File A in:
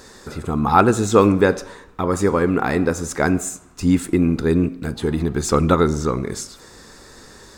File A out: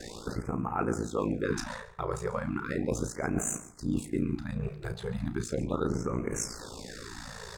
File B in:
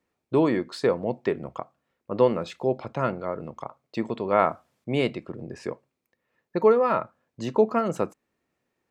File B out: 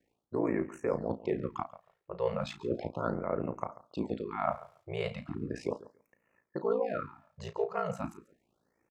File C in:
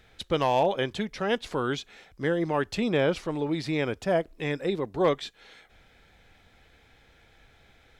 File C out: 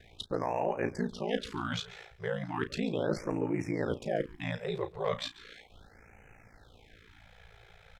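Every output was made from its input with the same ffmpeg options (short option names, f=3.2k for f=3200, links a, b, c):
-filter_complex "[0:a]highshelf=f=4.6k:g=-5.5,areverse,acompressor=threshold=-31dB:ratio=6,areverse,aeval=exprs='val(0)*sin(2*PI*28*n/s)':c=same,asplit=2[a][b];[b]adelay=34,volume=-11dB[c];[a][c]amix=inputs=2:normalize=0,aecho=1:1:140|280:0.126|0.0189,afftfilt=real='re*(1-between(b*sr/1024,240*pow(4200/240,0.5+0.5*sin(2*PI*0.36*pts/sr))/1.41,240*pow(4200/240,0.5+0.5*sin(2*PI*0.36*pts/sr))*1.41))':imag='im*(1-between(b*sr/1024,240*pow(4200/240,0.5+0.5*sin(2*PI*0.36*pts/sr))/1.41,240*pow(4200/240,0.5+0.5*sin(2*PI*0.36*pts/sr))*1.41))':win_size=1024:overlap=0.75,volume=5dB"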